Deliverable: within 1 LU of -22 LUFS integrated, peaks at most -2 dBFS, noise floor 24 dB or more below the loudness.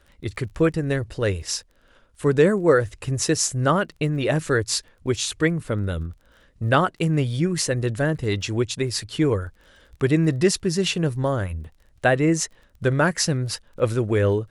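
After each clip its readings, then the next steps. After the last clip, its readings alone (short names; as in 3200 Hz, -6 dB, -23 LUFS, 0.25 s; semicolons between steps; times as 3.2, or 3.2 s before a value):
ticks 23/s; loudness -23.0 LUFS; peak -4.5 dBFS; loudness target -22.0 LUFS
-> de-click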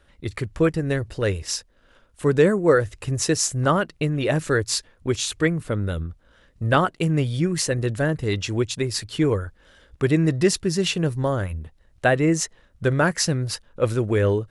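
ticks 0/s; loudness -23.0 LUFS; peak -4.5 dBFS; loudness target -22.0 LUFS
-> gain +1 dB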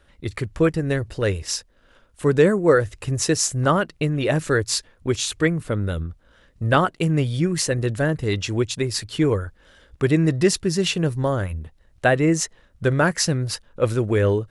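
loudness -22.0 LUFS; peak -3.5 dBFS; noise floor -58 dBFS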